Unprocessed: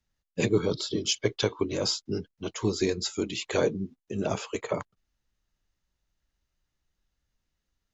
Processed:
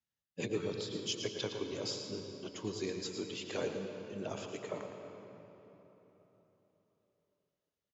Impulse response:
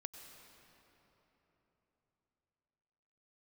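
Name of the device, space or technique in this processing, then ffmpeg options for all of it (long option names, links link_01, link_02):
PA in a hall: -filter_complex "[0:a]highpass=110,equalizer=frequency=3100:width_type=o:width=0.35:gain=4,aecho=1:1:112:0.335[link_01];[1:a]atrim=start_sample=2205[link_02];[link_01][link_02]afir=irnorm=-1:irlink=0,volume=-7dB"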